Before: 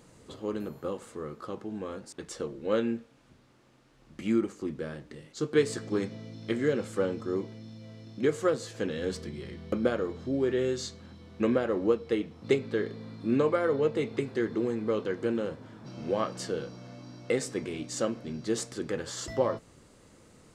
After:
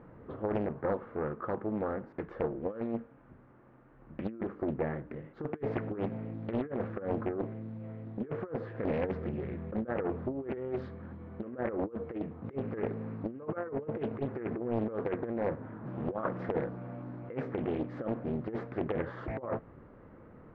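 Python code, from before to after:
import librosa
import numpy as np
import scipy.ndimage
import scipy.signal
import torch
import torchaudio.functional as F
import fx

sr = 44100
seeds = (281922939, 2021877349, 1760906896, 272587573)

y = scipy.signal.sosfilt(scipy.signal.butter(4, 1700.0, 'lowpass', fs=sr, output='sos'), x)
y = fx.over_compress(y, sr, threshold_db=-32.0, ratio=-0.5)
y = fx.doppler_dist(y, sr, depth_ms=0.75)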